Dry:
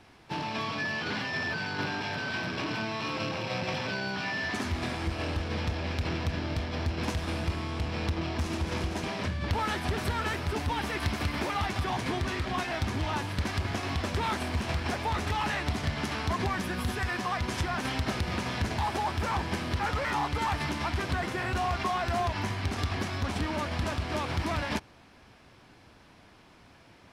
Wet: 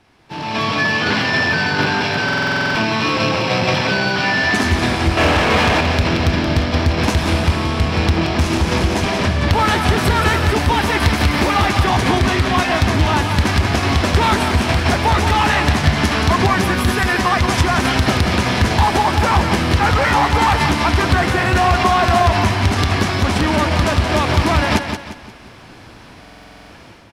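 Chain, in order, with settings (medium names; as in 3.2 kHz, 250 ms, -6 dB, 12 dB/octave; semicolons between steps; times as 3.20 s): 5.17–5.81 s: overdrive pedal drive 23 dB, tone 2.3 kHz, clips at -21 dBFS; level rider gain up to 15 dB; on a send: feedback delay 176 ms, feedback 37%, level -7.5 dB; on the sum: buffer glitch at 2.24/26.20 s, samples 2048, times 10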